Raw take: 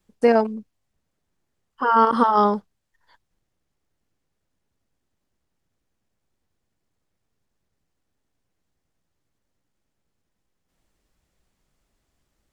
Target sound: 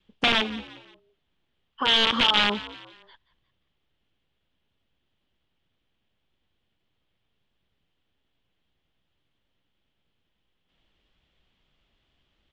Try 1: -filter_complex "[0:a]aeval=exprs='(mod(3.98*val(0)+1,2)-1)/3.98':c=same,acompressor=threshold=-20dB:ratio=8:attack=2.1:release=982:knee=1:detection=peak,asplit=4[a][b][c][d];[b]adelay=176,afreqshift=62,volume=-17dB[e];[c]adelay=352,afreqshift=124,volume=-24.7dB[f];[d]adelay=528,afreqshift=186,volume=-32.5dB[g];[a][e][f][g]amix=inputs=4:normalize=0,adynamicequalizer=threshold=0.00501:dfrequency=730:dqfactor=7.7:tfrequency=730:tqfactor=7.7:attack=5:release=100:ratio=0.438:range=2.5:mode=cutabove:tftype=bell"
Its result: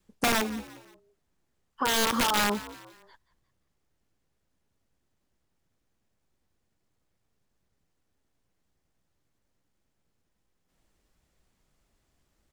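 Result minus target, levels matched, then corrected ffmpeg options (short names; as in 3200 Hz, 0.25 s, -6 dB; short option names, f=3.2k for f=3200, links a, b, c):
4000 Hz band -5.0 dB
-filter_complex "[0:a]aeval=exprs='(mod(3.98*val(0)+1,2)-1)/3.98':c=same,acompressor=threshold=-20dB:ratio=8:attack=2.1:release=982:knee=1:detection=peak,asplit=4[a][b][c][d];[b]adelay=176,afreqshift=62,volume=-17dB[e];[c]adelay=352,afreqshift=124,volume=-24.7dB[f];[d]adelay=528,afreqshift=186,volume=-32.5dB[g];[a][e][f][g]amix=inputs=4:normalize=0,adynamicequalizer=threshold=0.00501:dfrequency=730:dqfactor=7.7:tfrequency=730:tqfactor=7.7:attack=5:release=100:ratio=0.438:range=2.5:mode=cutabove:tftype=bell,lowpass=f=3.2k:t=q:w=4.6"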